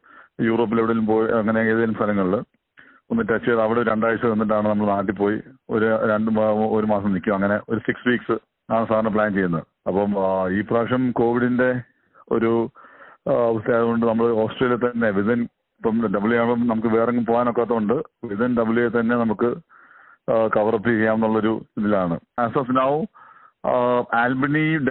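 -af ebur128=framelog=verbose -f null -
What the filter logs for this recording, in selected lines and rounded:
Integrated loudness:
  I:         -21.0 LUFS
  Threshold: -31.4 LUFS
Loudness range:
  LRA:         1.3 LU
  Threshold: -41.4 LUFS
  LRA low:   -22.0 LUFS
  LRA high:  -20.7 LUFS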